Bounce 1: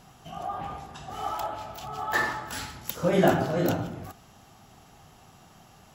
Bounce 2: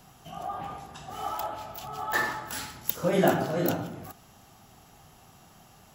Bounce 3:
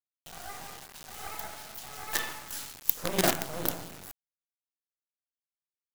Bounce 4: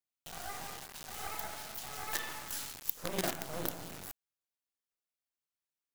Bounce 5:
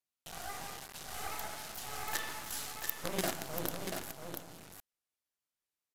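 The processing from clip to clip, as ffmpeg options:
-filter_complex "[0:a]highshelf=f=12000:g=11.5,acrossover=split=110|1300[s0][s1][s2];[s0]acompressor=threshold=0.00251:ratio=6[s3];[s3][s1][s2]amix=inputs=3:normalize=0,volume=0.841"
-af "acrusher=bits=4:dc=4:mix=0:aa=0.000001,highshelf=f=3200:g=9,volume=0.531"
-af "acompressor=threshold=0.02:ratio=2.5"
-af "aecho=1:1:687:0.501,aresample=32000,aresample=44100"

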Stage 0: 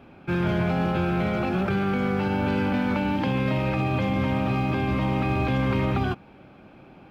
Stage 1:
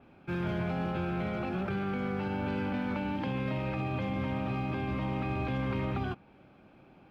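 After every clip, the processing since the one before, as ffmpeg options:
-af "adynamicequalizer=threshold=0.00282:dfrequency=4700:dqfactor=0.7:tfrequency=4700:tqfactor=0.7:attack=5:release=100:ratio=0.375:range=2.5:mode=cutabove:tftype=highshelf,volume=0.376"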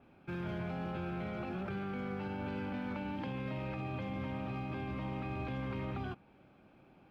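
-af "alimiter=level_in=1.5:limit=0.0631:level=0:latency=1,volume=0.668,volume=0.596"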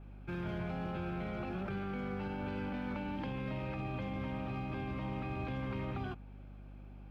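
-af "aeval=exprs='val(0)+0.00355*(sin(2*PI*50*n/s)+sin(2*PI*2*50*n/s)/2+sin(2*PI*3*50*n/s)/3+sin(2*PI*4*50*n/s)/4+sin(2*PI*5*50*n/s)/5)':c=same"

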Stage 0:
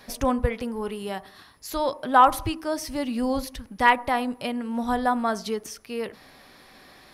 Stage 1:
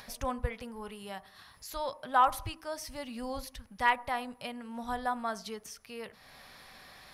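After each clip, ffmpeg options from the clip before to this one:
-af "equalizer=f=320:w=1.4:g=-11,acompressor=mode=upward:threshold=0.0141:ratio=2.5,volume=0.422"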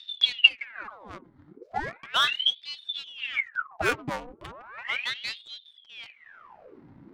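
-af "lowshelf=f=140:t=q:w=1.5:g=14,adynamicsmooth=sensitivity=6.5:basefreq=520,aeval=exprs='val(0)*sin(2*PI*1900*n/s+1900*0.9/0.36*sin(2*PI*0.36*n/s))':c=same,volume=1.5"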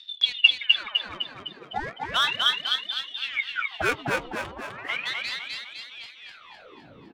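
-filter_complex "[0:a]asplit=8[s0][s1][s2][s3][s4][s5][s6][s7];[s1]adelay=254,afreqshift=48,volume=0.708[s8];[s2]adelay=508,afreqshift=96,volume=0.355[s9];[s3]adelay=762,afreqshift=144,volume=0.178[s10];[s4]adelay=1016,afreqshift=192,volume=0.0881[s11];[s5]adelay=1270,afreqshift=240,volume=0.0442[s12];[s6]adelay=1524,afreqshift=288,volume=0.0221[s13];[s7]adelay=1778,afreqshift=336,volume=0.0111[s14];[s0][s8][s9][s10][s11][s12][s13][s14]amix=inputs=8:normalize=0"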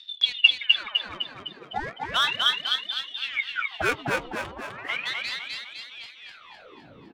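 -af anull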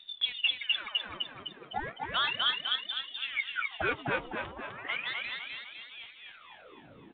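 -af "volume=7.08,asoftclip=hard,volume=0.141,volume=0.596" -ar 8000 -c:a pcm_alaw

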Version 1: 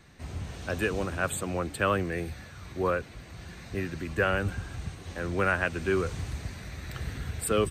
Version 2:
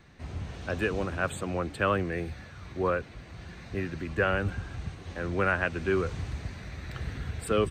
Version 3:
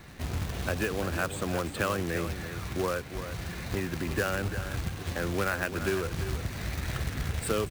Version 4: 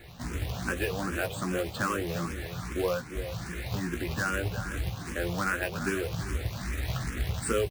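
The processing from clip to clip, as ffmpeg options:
-af "equalizer=f=12000:w=0.66:g=-14"
-af "acompressor=threshold=0.0141:ratio=3,acrusher=bits=2:mode=log:mix=0:aa=0.000001,aecho=1:1:344:0.299,volume=2.24"
-filter_complex "[0:a]asplit=2[s0][s1];[s1]adelay=17,volume=0.473[s2];[s0][s2]amix=inputs=2:normalize=0,asplit=2[s3][s4];[s4]afreqshift=2.5[s5];[s3][s5]amix=inputs=2:normalize=1,volume=1.26"

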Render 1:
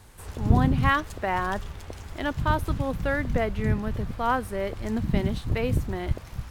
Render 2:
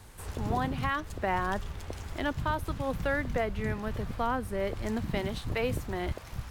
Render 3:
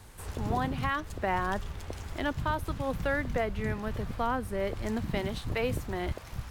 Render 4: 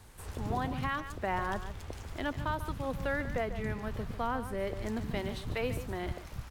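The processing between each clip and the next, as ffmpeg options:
-filter_complex "[0:a]acrossover=split=400[s0][s1];[s0]acompressor=threshold=0.0282:ratio=6[s2];[s1]alimiter=limit=0.0944:level=0:latency=1:release=498[s3];[s2][s3]amix=inputs=2:normalize=0"
-af anull
-af "aecho=1:1:145:0.266,volume=0.668"

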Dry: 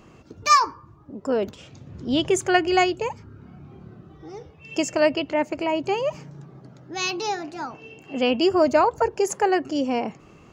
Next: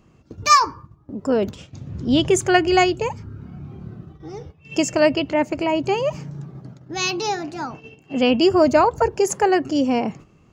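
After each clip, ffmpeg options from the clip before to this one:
-af "bass=f=250:g=7,treble=f=4000:g=2,agate=range=0.282:threshold=0.01:ratio=16:detection=peak,volume=1.33"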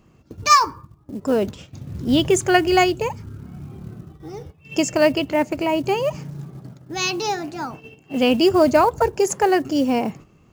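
-af "acrusher=bits=7:mode=log:mix=0:aa=0.000001"

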